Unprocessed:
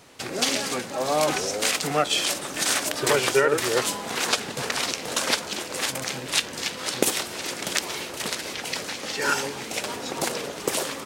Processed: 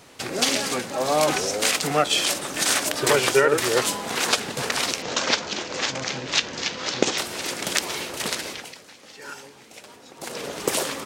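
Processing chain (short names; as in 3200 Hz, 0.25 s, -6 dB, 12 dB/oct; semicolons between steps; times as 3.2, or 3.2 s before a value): 5.02–7.18 steep low-pass 6900 Hz 48 dB/oct; 8.4–10.54 dip -16.5 dB, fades 0.35 s; gain +2 dB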